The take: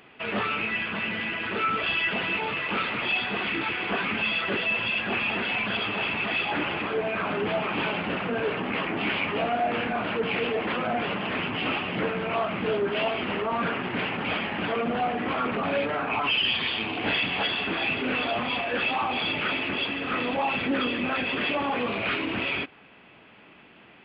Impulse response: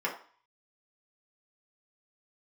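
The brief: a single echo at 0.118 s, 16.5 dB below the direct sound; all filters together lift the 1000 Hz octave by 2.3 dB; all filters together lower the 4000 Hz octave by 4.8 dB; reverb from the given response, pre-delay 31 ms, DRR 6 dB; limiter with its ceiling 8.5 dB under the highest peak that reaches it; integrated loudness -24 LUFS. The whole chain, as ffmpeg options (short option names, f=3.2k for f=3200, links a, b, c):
-filter_complex "[0:a]equalizer=f=1k:t=o:g=3.5,equalizer=f=4k:t=o:g=-7.5,alimiter=limit=-23dB:level=0:latency=1,aecho=1:1:118:0.15,asplit=2[a][b];[1:a]atrim=start_sample=2205,adelay=31[c];[b][c]afir=irnorm=-1:irlink=0,volume=-14dB[d];[a][d]amix=inputs=2:normalize=0,volume=5.5dB"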